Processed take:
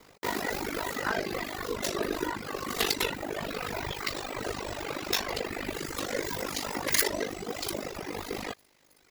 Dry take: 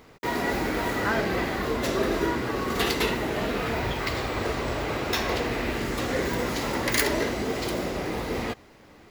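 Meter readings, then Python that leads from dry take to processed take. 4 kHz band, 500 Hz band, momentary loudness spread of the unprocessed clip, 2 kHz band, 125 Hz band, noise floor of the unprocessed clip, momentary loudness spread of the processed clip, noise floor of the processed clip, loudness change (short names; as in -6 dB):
-2.0 dB, -6.5 dB, 5 LU, -5.0 dB, -10.5 dB, -52 dBFS, 8 LU, -63 dBFS, -5.0 dB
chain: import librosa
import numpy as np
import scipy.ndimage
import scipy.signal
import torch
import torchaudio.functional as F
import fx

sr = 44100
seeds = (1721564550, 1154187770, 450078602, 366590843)

y = fx.echo_wet_highpass(x, sr, ms=320, feedback_pct=68, hz=1900.0, wet_db=-20.0)
y = y * np.sin(2.0 * np.pi * 25.0 * np.arange(len(y)) / sr)
y = fx.bass_treble(y, sr, bass_db=-5, treble_db=7)
y = fx.dereverb_blind(y, sr, rt60_s=1.8)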